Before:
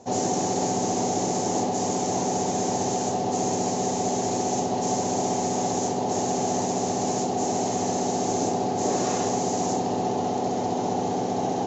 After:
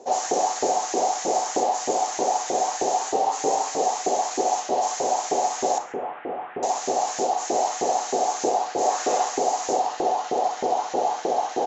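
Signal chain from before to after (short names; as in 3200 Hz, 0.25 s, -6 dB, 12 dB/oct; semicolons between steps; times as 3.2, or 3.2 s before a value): 5.78–6.63 delta modulation 16 kbps, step -44 dBFS; bell 98 Hz +11.5 dB 0.55 oct; 3.01–3.81 frequency shift +32 Hz; Schroeder reverb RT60 0.35 s, combs from 28 ms, DRR 10.5 dB; LFO high-pass saw up 3.2 Hz 370–1800 Hz; echo 0.138 s -21.5 dB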